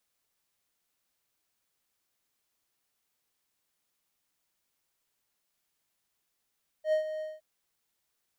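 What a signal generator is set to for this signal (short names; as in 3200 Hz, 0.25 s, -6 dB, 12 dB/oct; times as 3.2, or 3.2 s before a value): ADSR triangle 622 Hz, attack 85 ms, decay 0.108 s, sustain -11 dB, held 0.37 s, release 0.195 s -20 dBFS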